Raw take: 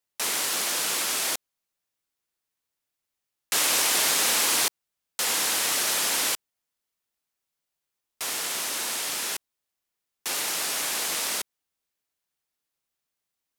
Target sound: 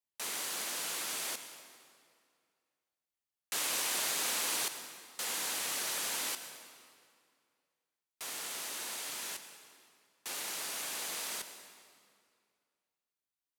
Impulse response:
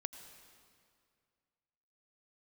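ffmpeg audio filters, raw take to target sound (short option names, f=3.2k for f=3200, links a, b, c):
-filter_complex "[0:a]bandreject=f=5.3k:w=30[a];[1:a]atrim=start_sample=2205[b];[a][b]afir=irnorm=-1:irlink=0,volume=-8.5dB"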